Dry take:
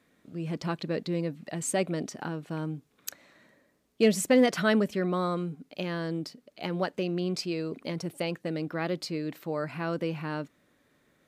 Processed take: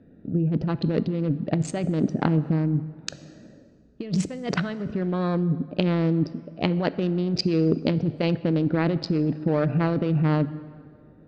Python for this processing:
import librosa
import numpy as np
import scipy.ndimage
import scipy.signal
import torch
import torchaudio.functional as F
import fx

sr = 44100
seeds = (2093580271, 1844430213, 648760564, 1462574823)

y = fx.wiener(x, sr, points=41)
y = scipy.signal.sosfilt(scipy.signal.butter(4, 5100.0, 'lowpass', fs=sr, output='sos'), y)
y = fx.low_shelf(y, sr, hz=260.0, db=8.0)
y = fx.over_compress(y, sr, threshold_db=-32.0, ratio=-1.0)
y = fx.rev_plate(y, sr, seeds[0], rt60_s=2.1, hf_ratio=0.65, predelay_ms=0, drr_db=15.0)
y = y * librosa.db_to_amplitude(8.5)